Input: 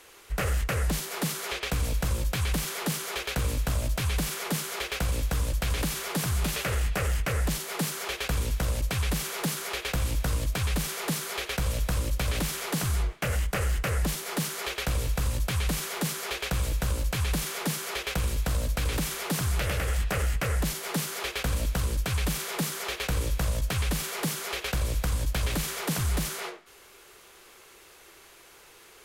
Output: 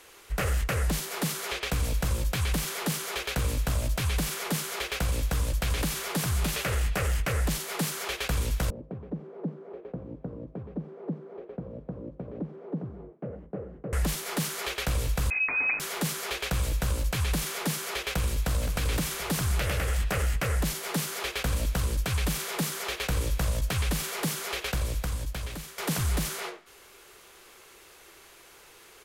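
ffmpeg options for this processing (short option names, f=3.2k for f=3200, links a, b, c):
-filter_complex "[0:a]asettb=1/sr,asplit=3[a][b][c];[a]atrim=end=8.704[d];[b]atrim=start=8.7:end=13.93,asetpts=PTS-STARTPTS,afade=t=in:d=0.004:c=qsin,afade=t=out:st=5.226:d=0.004:c=qsin,asuperpass=centerf=290:order=4:qfactor=0.82[e];[c]atrim=start=13.926[f];[d][e]acrossfade=d=0.004:c1=hsin:c2=qsin[g];[g][f]acrossfade=d=0.004:c1=qsin:c2=hsin,asettb=1/sr,asplit=3[h][i][j];[h]atrim=end=15.304[k];[i]atrim=start=15.3:end=15.8,asetpts=PTS-STARTPTS,afade=t=in:d=0.004:c=qsin,afade=t=out:st=0.496:d=0.004:c=qsin,lowpass=f=2.2k:t=q:w=0.5098,lowpass=f=2.2k:t=q:w=0.6013,lowpass=f=2.2k:t=q:w=0.9,lowpass=f=2.2k:t=q:w=2.563,afreqshift=-2600[l];[j]atrim=start=15.796[m];[k][l]acrossfade=d=0.004:c1=hsin:c2=qsin[n];[n][m]acrossfade=d=0.004:c1=qsin:c2=hsin,asplit=2[o][p];[p]afade=t=in:st=18.1:d=0.01,afade=t=out:st=18.53:d=0.01,aecho=0:1:520|1040|1560|2080:0.334965|0.133986|0.0535945|0.0214378[q];[o][q]amix=inputs=2:normalize=0,asplit=2[r][s];[r]atrim=end=25.78,asetpts=PTS-STARTPTS,afade=t=out:st=24.62:d=1.16:silence=0.199526[t];[s]atrim=start=25.78,asetpts=PTS-STARTPTS,afade=t=in:d=0.004:c=hsin:silence=0.199526[u];[t][u]concat=n=2:v=0:a=1"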